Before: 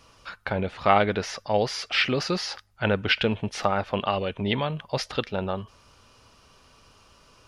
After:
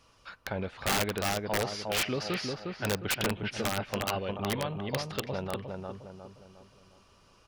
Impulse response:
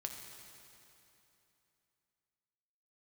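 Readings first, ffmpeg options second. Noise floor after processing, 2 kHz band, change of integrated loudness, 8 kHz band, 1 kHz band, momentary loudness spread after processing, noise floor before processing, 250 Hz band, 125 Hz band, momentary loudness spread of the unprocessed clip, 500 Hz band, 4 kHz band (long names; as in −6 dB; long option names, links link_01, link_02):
−62 dBFS, −6.0 dB, −6.0 dB, +3.5 dB, −8.5 dB, 13 LU, −58 dBFS, −5.5 dB, −5.0 dB, 9 LU, −7.0 dB, −5.5 dB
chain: -filter_complex "[0:a]asplit=2[link_01][link_02];[link_02]adelay=357,lowpass=frequency=1500:poles=1,volume=-3.5dB,asplit=2[link_03][link_04];[link_04]adelay=357,lowpass=frequency=1500:poles=1,volume=0.44,asplit=2[link_05][link_06];[link_06]adelay=357,lowpass=frequency=1500:poles=1,volume=0.44,asplit=2[link_07][link_08];[link_08]adelay=357,lowpass=frequency=1500:poles=1,volume=0.44,asplit=2[link_09][link_10];[link_10]adelay=357,lowpass=frequency=1500:poles=1,volume=0.44,asplit=2[link_11][link_12];[link_12]adelay=357,lowpass=frequency=1500:poles=1,volume=0.44[link_13];[link_01][link_03][link_05][link_07][link_09][link_11][link_13]amix=inputs=7:normalize=0,aeval=exprs='(mod(5.01*val(0)+1,2)-1)/5.01':channel_layout=same,volume=-7dB"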